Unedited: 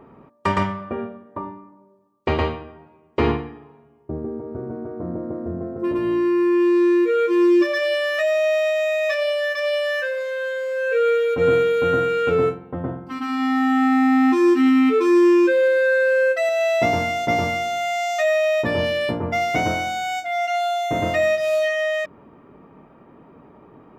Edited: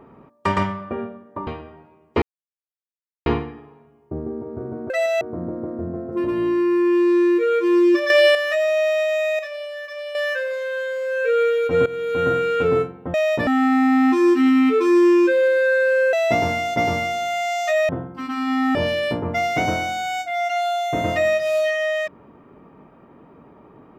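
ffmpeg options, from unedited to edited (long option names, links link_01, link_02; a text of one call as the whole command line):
ffmpeg -i in.wav -filter_complex "[0:a]asplit=15[link_01][link_02][link_03][link_04][link_05][link_06][link_07][link_08][link_09][link_10][link_11][link_12][link_13][link_14][link_15];[link_01]atrim=end=1.472[link_16];[link_02]atrim=start=2.488:end=3.24,asetpts=PTS-STARTPTS,afade=type=out:start_time=0.748:duration=0.004:curve=hsin,apad=pad_dur=1.04[link_17];[link_03]atrim=start=3.24:end=4.882,asetpts=PTS-STARTPTS,afade=type=in:duration=0.004:curve=hsin[link_18];[link_04]atrim=start=16.328:end=16.642[link_19];[link_05]atrim=start=4.878:end=7.772[link_20];[link_06]atrim=start=7.768:end=8.022,asetpts=PTS-STARTPTS,volume=8dB[link_21];[link_07]atrim=start=8.018:end=9.062[link_22];[link_08]atrim=start=9.058:end=9.822,asetpts=PTS-STARTPTS,volume=-9.5dB[link_23];[link_09]atrim=start=9.818:end=11.53,asetpts=PTS-STARTPTS,afade=type=out:start_time=1.708:duration=0.004:curve=hsin:silence=0.133352[link_24];[link_10]atrim=start=11.53:end=12.812,asetpts=PTS-STARTPTS,afade=type=in:duration=0.42:silence=0.133352[link_25];[link_11]atrim=start=18.398:end=18.732[link_26];[link_12]atrim=start=13.668:end=16.332[link_27];[link_13]atrim=start=16.638:end=18.402[link_28];[link_14]atrim=start=12.808:end=13.672[link_29];[link_15]atrim=start=18.728[link_30];[link_17][link_18]concat=n=2:v=0:a=1[link_31];[link_16][link_31]acrossfade=duration=0.004:curve1=hsin:curve2=hsin[link_32];[link_32][link_19]acrossfade=duration=0.004:curve1=hsin:curve2=hsin[link_33];[link_33][link_20]acrossfade=duration=0.004:curve1=hsin:curve2=hsin[link_34];[link_34][link_21]acrossfade=duration=0.004:curve1=hsin:curve2=hsin[link_35];[link_35][link_22]acrossfade=duration=0.004:curve1=hsin:curve2=hsin[link_36];[link_36][link_23]acrossfade=duration=0.004:curve1=hsin:curve2=hsin[link_37];[link_24][link_25]concat=n=2:v=0:a=1[link_38];[link_37][link_38]acrossfade=duration=0.004:curve1=hsin:curve2=hsin[link_39];[link_39][link_26]acrossfade=duration=0.004:curve1=hsin:curve2=hsin[link_40];[link_40][link_27]acrossfade=duration=0.004:curve1=hsin:curve2=hsin[link_41];[link_41][link_28]acrossfade=duration=0.004:curve1=hsin:curve2=hsin[link_42];[link_42][link_29]acrossfade=duration=0.004:curve1=hsin:curve2=hsin[link_43];[link_43][link_30]acrossfade=duration=0.004:curve1=hsin:curve2=hsin" out.wav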